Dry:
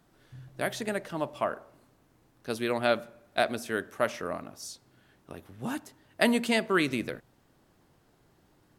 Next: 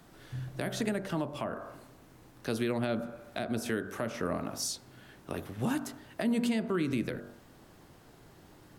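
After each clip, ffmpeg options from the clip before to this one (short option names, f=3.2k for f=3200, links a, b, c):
-filter_complex "[0:a]bandreject=f=48.19:t=h:w=4,bandreject=f=96.38:t=h:w=4,bandreject=f=144.57:t=h:w=4,bandreject=f=192.76:t=h:w=4,bandreject=f=240.95:t=h:w=4,bandreject=f=289.14:t=h:w=4,bandreject=f=337.33:t=h:w=4,bandreject=f=385.52:t=h:w=4,bandreject=f=433.71:t=h:w=4,bandreject=f=481.9:t=h:w=4,bandreject=f=530.09:t=h:w=4,bandreject=f=578.28:t=h:w=4,bandreject=f=626.47:t=h:w=4,bandreject=f=674.66:t=h:w=4,bandreject=f=722.85:t=h:w=4,bandreject=f=771.04:t=h:w=4,bandreject=f=819.23:t=h:w=4,bandreject=f=867.42:t=h:w=4,bandreject=f=915.61:t=h:w=4,bandreject=f=963.8:t=h:w=4,bandreject=f=1.01199k:t=h:w=4,bandreject=f=1.06018k:t=h:w=4,bandreject=f=1.10837k:t=h:w=4,bandreject=f=1.15656k:t=h:w=4,bandreject=f=1.20475k:t=h:w=4,bandreject=f=1.25294k:t=h:w=4,bandreject=f=1.30113k:t=h:w=4,bandreject=f=1.34932k:t=h:w=4,bandreject=f=1.39751k:t=h:w=4,bandreject=f=1.4457k:t=h:w=4,bandreject=f=1.49389k:t=h:w=4,bandreject=f=1.54208k:t=h:w=4,bandreject=f=1.59027k:t=h:w=4,bandreject=f=1.63846k:t=h:w=4,acrossover=split=320[a][b];[b]acompressor=threshold=-39dB:ratio=6[c];[a][c]amix=inputs=2:normalize=0,alimiter=level_in=6.5dB:limit=-24dB:level=0:latency=1:release=227,volume=-6.5dB,volume=9dB"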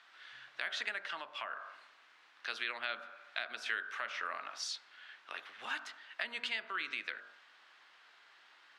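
-af "asuperpass=centerf=2300:order=4:qfactor=0.85,volume=4.5dB"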